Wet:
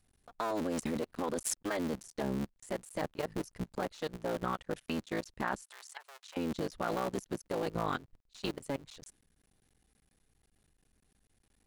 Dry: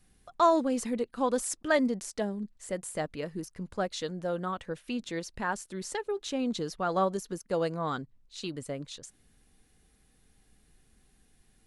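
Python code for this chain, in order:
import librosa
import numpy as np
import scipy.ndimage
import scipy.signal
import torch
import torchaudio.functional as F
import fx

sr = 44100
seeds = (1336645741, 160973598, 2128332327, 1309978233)

y = fx.cycle_switch(x, sr, every=3, mode='muted')
y = fx.highpass(y, sr, hz=880.0, slope=24, at=(5.63, 6.37))
y = fx.level_steps(y, sr, step_db=19)
y = F.gain(torch.from_numpy(y), 4.5).numpy()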